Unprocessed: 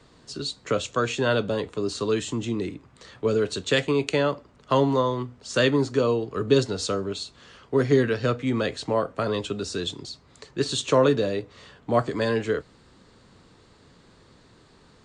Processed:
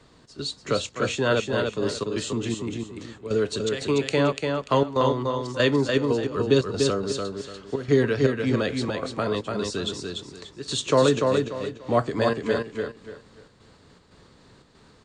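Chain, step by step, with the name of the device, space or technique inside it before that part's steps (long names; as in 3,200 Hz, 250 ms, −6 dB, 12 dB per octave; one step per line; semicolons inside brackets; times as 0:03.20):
trance gate with a delay (gate pattern "xx.xxxx.x" 118 BPM −12 dB; repeating echo 292 ms, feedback 28%, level −4 dB)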